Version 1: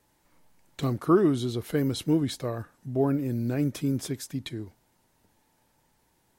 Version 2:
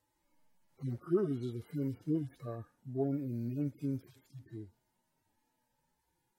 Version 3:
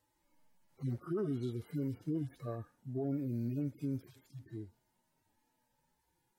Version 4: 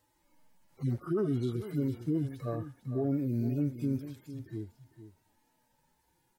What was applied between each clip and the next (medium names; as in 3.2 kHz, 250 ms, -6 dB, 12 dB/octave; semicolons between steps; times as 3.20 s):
harmonic-percussive separation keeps harmonic; trim -8.5 dB
peak limiter -29.5 dBFS, peak gain reduction 9.5 dB; trim +1 dB
delay 452 ms -12.5 dB; trim +5.5 dB